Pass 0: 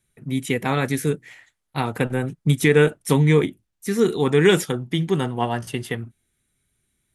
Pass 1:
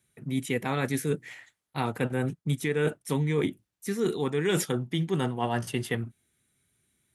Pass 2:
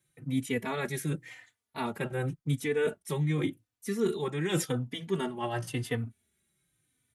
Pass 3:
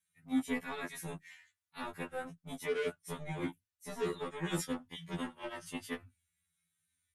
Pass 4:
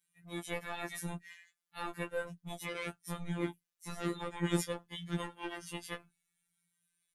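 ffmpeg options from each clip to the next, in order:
ffmpeg -i in.wav -af "highpass=83,areverse,acompressor=threshold=-24dB:ratio=6,areverse" out.wav
ffmpeg -i in.wav -filter_complex "[0:a]asplit=2[link_01][link_02];[link_02]adelay=3.3,afreqshift=-0.9[link_03];[link_01][link_03]amix=inputs=2:normalize=1" out.wav
ffmpeg -i in.wav -filter_complex "[0:a]acrossover=split=170|950[link_01][link_02][link_03];[link_02]acrusher=bits=4:mix=0:aa=0.5[link_04];[link_01][link_04][link_03]amix=inputs=3:normalize=0,afftfilt=real='re*2*eq(mod(b,4),0)':imag='im*2*eq(mod(b,4),0)':win_size=2048:overlap=0.75,volume=-4dB" out.wav
ffmpeg -i in.wav -af "afftfilt=real='hypot(re,im)*cos(PI*b)':imag='0':win_size=1024:overlap=0.75,volume=5dB" out.wav

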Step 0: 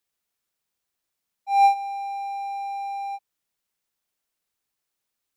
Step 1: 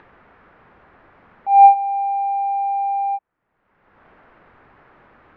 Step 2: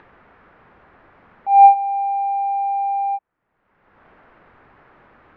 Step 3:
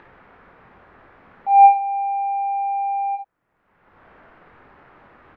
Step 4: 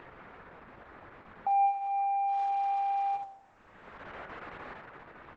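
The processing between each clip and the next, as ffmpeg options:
ffmpeg -i in.wav -filter_complex "[0:a]lowpass=frequency=1700:width=0.5412,lowpass=frequency=1700:width=1.3066,asplit=2[link_01][link_02];[link_02]acompressor=mode=upward:threshold=-25dB:ratio=2.5,volume=1dB[link_03];[link_01][link_03]amix=inputs=2:normalize=0,volume=2dB" out.wav
ffmpeg -i in.wav -af anull out.wav
ffmpeg -i in.wav -af "aecho=1:1:23|55:0.447|0.473" out.wav
ffmpeg -i in.wav -af "bandreject=frequency=97.92:width_type=h:width=4,bandreject=frequency=195.84:width_type=h:width=4,bandreject=frequency=293.76:width_type=h:width=4,bandreject=frequency=391.68:width_type=h:width=4,bandreject=frequency=489.6:width_type=h:width=4,bandreject=frequency=587.52:width_type=h:width=4,bandreject=frequency=685.44:width_type=h:width=4,bandreject=frequency=783.36:width_type=h:width=4,bandreject=frequency=881.28:width_type=h:width=4,bandreject=frequency=979.2:width_type=h:width=4,bandreject=frequency=1077.12:width_type=h:width=4,bandreject=frequency=1175.04:width_type=h:width=4,bandreject=frequency=1272.96:width_type=h:width=4,bandreject=frequency=1370.88:width_type=h:width=4,bandreject=frequency=1468.8:width_type=h:width=4,bandreject=frequency=1566.72:width_type=h:width=4,bandreject=frequency=1664.64:width_type=h:width=4,bandreject=frequency=1762.56:width_type=h:width=4,bandreject=frequency=1860.48:width_type=h:width=4,bandreject=frequency=1958.4:width_type=h:width=4,bandreject=frequency=2056.32:width_type=h:width=4,bandreject=frequency=2154.24:width_type=h:width=4,bandreject=frequency=2252.16:width_type=h:width=4,bandreject=frequency=2350.08:width_type=h:width=4,bandreject=frequency=2448:width_type=h:width=4,bandreject=frequency=2545.92:width_type=h:width=4,bandreject=frequency=2643.84:width_type=h:width=4,bandreject=frequency=2741.76:width_type=h:width=4,acompressor=threshold=-30dB:ratio=3" -ar 48000 -c:a libopus -b:a 10k out.opus

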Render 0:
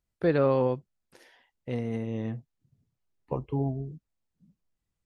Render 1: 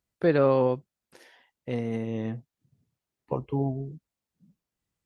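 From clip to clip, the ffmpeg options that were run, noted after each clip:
ffmpeg -i in.wav -af "highpass=frequency=110:poles=1,volume=2.5dB" out.wav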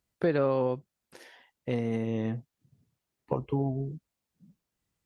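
ffmpeg -i in.wav -af "acompressor=threshold=-28dB:ratio=2.5,volume=2.5dB" out.wav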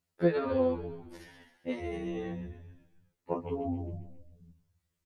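ffmpeg -i in.wav -filter_complex "[0:a]asplit=2[link_01][link_02];[link_02]asplit=6[link_03][link_04][link_05][link_06][link_07][link_08];[link_03]adelay=134,afreqshift=-44,volume=-10dB[link_09];[link_04]adelay=268,afreqshift=-88,volume=-15.4dB[link_10];[link_05]adelay=402,afreqshift=-132,volume=-20.7dB[link_11];[link_06]adelay=536,afreqshift=-176,volume=-26.1dB[link_12];[link_07]adelay=670,afreqshift=-220,volume=-31.4dB[link_13];[link_08]adelay=804,afreqshift=-264,volume=-36.8dB[link_14];[link_09][link_10][link_11][link_12][link_13][link_14]amix=inputs=6:normalize=0[link_15];[link_01][link_15]amix=inputs=2:normalize=0,afftfilt=real='re*2*eq(mod(b,4),0)':imag='im*2*eq(mod(b,4),0)':win_size=2048:overlap=0.75" out.wav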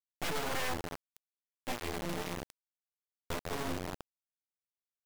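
ffmpeg -i in.wav -af "aeval=exprs='(mod(18.8*val(0)+1,2)-1)/18.8':channel_layout=same,acrusher=bits=3:dc=4:mix=0:aa=0.000001" out.wav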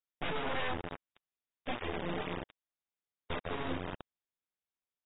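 ffmpeg -i in.wav -ar 16000 -c:a aac -b:a 16k out.aac

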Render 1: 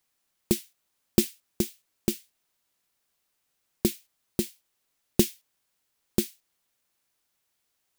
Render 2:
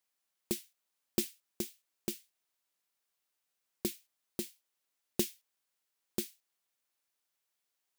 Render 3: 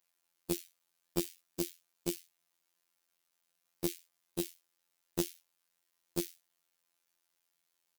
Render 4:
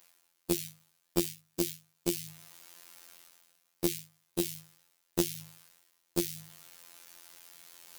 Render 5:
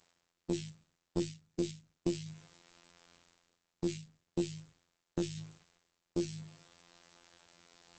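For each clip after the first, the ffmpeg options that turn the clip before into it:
ffmpeg -i in.wav -af "lowshelf=frequency=210:gain=-11,volume=-7.5dB" out.wav
ffmpeg -i in.wav -af "aecho=1:1:5.9:0.47,acompressor=threshold=-32dB:ratio=4,afftfilt=real='hypot(re,im)*cos(PI*b)':imag='0':win_size=2048:overlap=0.75,volume=6dB" out.wav
ffmpeg -i in.wav -af "bandreject=frequency=52.38:width_type=h:width=4,bandreject=frequency=104.76:width_type=h:width=4,bandreject=frequency=157.14:width_type=h:width=4,bandreject=frequency=209.52:width_type=h:width=4,areverse,acompressor=mode=upward:threshold=-34dB:ratio=2.5,areverse,volume=4.5dB" out.wav
ffmpeg -i in.wav -af "tiltshelf=frequency=740:gain=5.5,alimiter=limit=-14.5dB:level=0:latency=1:release=34,volume=1dB" -ar 48000 -c:a libopus -b:a 10k out.opus

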